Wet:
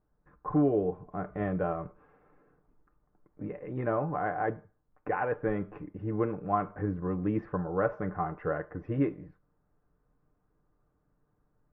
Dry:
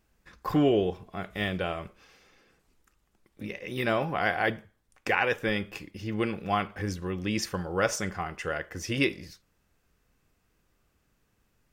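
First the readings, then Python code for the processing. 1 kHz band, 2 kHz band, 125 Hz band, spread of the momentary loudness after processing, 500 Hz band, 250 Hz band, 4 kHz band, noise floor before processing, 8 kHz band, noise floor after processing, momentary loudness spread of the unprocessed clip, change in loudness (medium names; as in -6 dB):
-1.5 dB, -10.5 dB, 0.0 dB, 12 LU, -1.5 dB, -1.0 dB, under -30 dB, -73 dBFS, under -40 dB, -75 dBFS, 14 LU, -2.5 dB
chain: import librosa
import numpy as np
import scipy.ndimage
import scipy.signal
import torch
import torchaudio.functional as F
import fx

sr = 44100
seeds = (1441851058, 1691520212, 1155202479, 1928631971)

y = scipy.signal.sosfilt(scipy.signal.butter(4, 1300.0, 'lowpass', fs=sr, output='sos'), x)
y = y + 0.46 * np.pad(y, (int(6.7 * sr / 1000.0), 0))[:len(y)]
y = fx.rider(y, sr, range_db=3, speed_s=0.5)
y = y * librosa.db_to_amplitude(-1.5)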